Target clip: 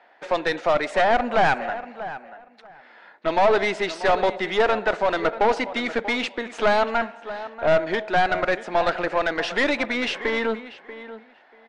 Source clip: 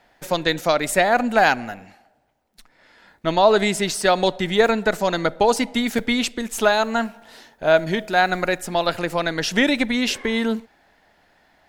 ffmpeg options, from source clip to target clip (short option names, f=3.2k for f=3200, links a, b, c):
-filter_complex "[0:a]highpass=300,lowpass=3.9k,asplit=2[a][b];[b]highpass=f=720:p=1,volume=19dB,asoftclip=type=tanh:threshold=-2dB[c];[a][c]amix=inputs=2:normalize=0,lowpass=f=1.4k:p=1,volume=-6dB,asplit=2[d][e];[e]adelay=637,lowpass=f=2.9k:p=1,volume=-14dB,asplit=2[f][g];[g]adelay=637,lowpass=f=2.9k:p=1,volume=0.18[h];[d][f][h]amix=inputs=3:normalize=0,aeval=exprs='(tanh(2.51*val(0)+0.5)-tanh(0.5))/2.51':c=same,volume=-3dB" -ar 24000 -c:a libmp3lame -b:a 80k